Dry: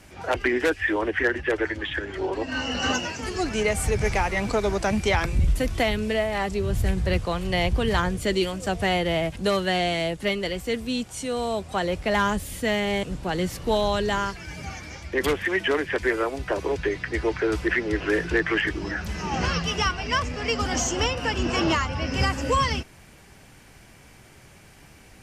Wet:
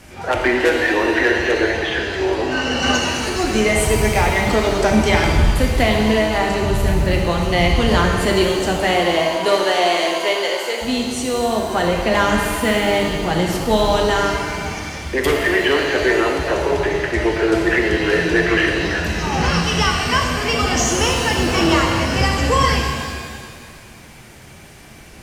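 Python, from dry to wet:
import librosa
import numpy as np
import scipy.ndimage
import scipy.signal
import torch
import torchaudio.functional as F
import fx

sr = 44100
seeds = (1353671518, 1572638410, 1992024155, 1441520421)

p1 = fx.highpass(x, sr, hz=fx.line((8.78, 200.0), (10.81, 460.0)), slope=24, at=(8.78, 10.81), fade=0.02)
p2 = 10.0 ** (-27.0 / 20.0) * np.tanh(p1 / 10.0 ** (-27.0 / 20.0))
p3 = p1 + F.gain(torch.from_numpy(p2), -10.0).numpy()
p4 = fx.rev_shimmer(p3, sr, seeds[0], rt60_s=1.9, semitones=7, shimmer_db=-8, drr_db=0.5)
y = F.gain(torch.from_numpy(p4), 3.5).numpy()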